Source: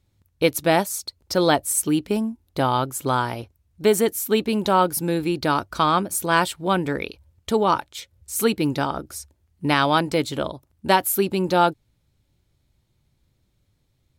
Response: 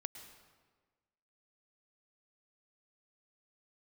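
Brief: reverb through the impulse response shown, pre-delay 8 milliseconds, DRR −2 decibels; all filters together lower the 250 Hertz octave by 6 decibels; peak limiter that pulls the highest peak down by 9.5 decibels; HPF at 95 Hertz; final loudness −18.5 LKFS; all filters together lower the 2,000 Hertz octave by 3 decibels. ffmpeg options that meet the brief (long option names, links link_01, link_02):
-filter_complex "[0:a]highpass=95,equalizer=frequency=250:width_type=o:gain=-8.5,equalizer=frequency=2000:width_type=o:gain=-4,alimiter=limit=-14.5dB:level=0:latency=1,asplit=2[link_01][link_02];[1:a]atrim=start_sample=2205,adelay=8[link_03];[link_02][link_03]afir=irnorm=-1:irlink=0,volume=4.5dB[link_04];[link_01][link_04]amix=inputs=2:normalize=0,volume=5dB"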